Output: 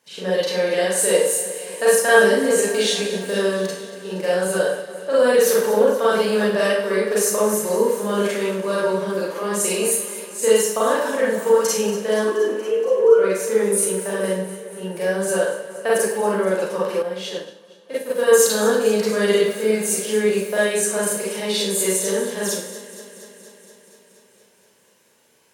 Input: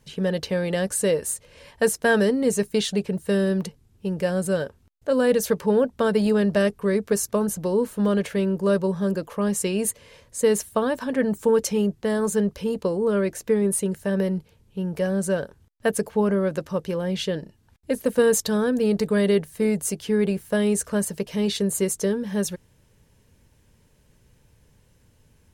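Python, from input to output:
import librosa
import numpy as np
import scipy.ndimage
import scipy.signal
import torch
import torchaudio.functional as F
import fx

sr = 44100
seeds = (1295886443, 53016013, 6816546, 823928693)

y = fx.sine_speech(x, sr, at=(12.24, 13.19))
y = scipy.signal.sosfilt(scipy.signal.butter(2, 440.0, 'highpass', fs=sr, output='sos'), y)
y = fx.echo_alternate(y, sr, ms=118, hz=1900.0, feedback_pct=84, wet_db=-13.0)
y = fx.rev_schroeder(y, sr, rt60_s=0.58, comb_ms=33, drr_db=-7.5)
y = fx.upward_expand(y, sr, threshold_db=-34.0, expansion=1.5, at=(17.02, 18.4))
y = y * 10.0 ** (-1.0 / 20.0)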